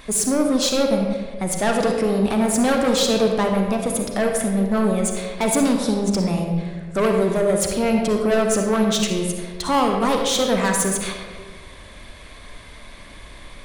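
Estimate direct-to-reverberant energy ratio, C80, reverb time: 2.0 dB, 4.5 dB, 1.6 s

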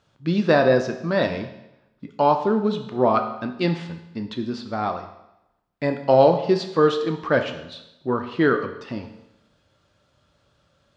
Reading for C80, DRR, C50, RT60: 11.5 dB, 5.0 dB, 9.5 dB, 0.90 s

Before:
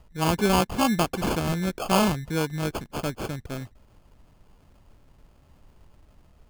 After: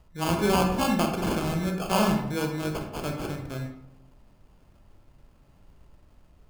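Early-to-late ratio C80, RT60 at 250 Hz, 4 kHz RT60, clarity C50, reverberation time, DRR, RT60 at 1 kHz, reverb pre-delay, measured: 8.5 dB, 0.95 s, 0.50 s, 5.5 dB, 0.85 s, 2.5 dB, 0.75 s, 25 ms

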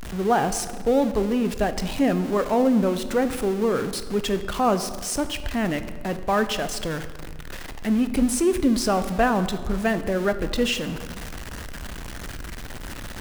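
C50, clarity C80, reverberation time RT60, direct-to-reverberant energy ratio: 12.0 dB, 13.0 dB, 1.5 s, 10.0 dB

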